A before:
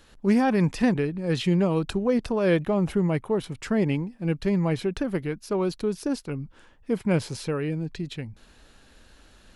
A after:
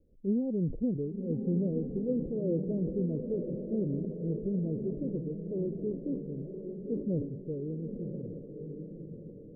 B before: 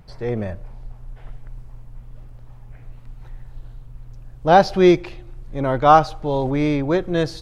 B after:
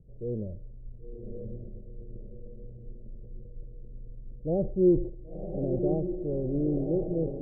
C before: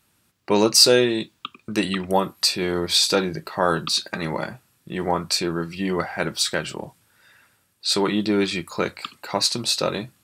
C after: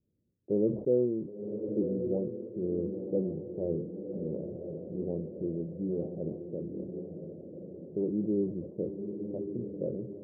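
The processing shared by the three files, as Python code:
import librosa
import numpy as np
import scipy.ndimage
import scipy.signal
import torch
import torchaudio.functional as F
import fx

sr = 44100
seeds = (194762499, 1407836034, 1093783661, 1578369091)

p1 = scipy.signal.sosfilt(scipy.signal.butter(8, 540.0, 'lowpass', fs=sr, output='sos'), x)
p2 = p1 + fx.echo_diffused(p1, sr, ms=1051, feedback_pct=44, wet_db=-6, dry=0)
p3 = fx.sustainer(p2, sr, db_per_s=100.0)
y = p3 * 10.0 ** (-8.5 / 20.0)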